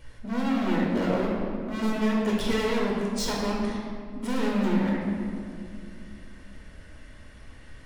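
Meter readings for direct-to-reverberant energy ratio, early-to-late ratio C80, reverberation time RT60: -3.5 dB, 2.0 dB, 2.3 s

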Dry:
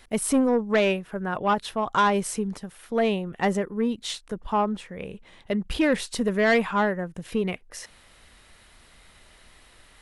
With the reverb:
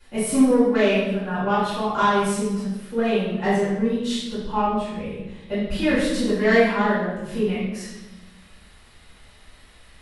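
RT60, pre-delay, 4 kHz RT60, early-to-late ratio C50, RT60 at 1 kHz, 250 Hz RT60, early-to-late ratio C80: 1.1 s, 3 ms, 0.95 s, -0.5 dB, 0.90 s, 1.6 s, 3.0 dB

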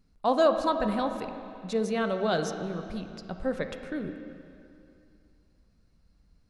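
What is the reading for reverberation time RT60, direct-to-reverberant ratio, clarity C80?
2.6 s, 6.0 dB, 8.0 dB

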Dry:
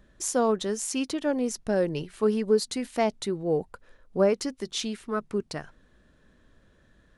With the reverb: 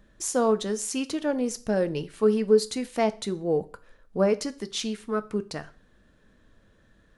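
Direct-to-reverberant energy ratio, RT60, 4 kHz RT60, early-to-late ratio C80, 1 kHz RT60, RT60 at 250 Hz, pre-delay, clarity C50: 11.5 dB, 0.40 s, 0.40 s, 24.0 dB, 0.40 s, 0.45 s, 3 ms, 19.5 dB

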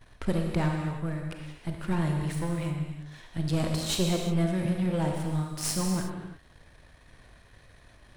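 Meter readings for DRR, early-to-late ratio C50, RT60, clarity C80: 1.5 dB, 2.5 dB, no single decay rate, 4.0 dB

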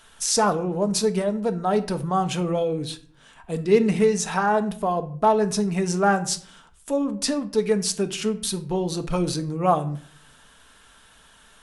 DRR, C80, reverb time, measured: 7.5 dB, 20.0 dB, 0.50 s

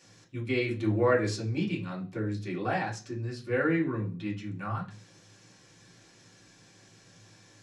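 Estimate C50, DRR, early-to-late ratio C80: 11.5 dB, -5.5 dB, 17.5 dB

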